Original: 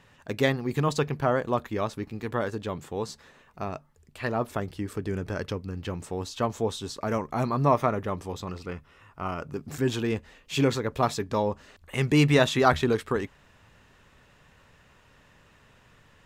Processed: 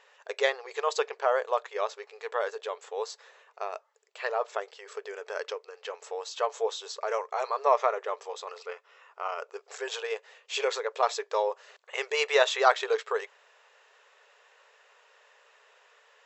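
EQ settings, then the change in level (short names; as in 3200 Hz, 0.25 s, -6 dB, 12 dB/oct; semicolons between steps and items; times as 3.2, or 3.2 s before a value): brick-wall FIR band-pass 400–7900 Hz; 0.0 dB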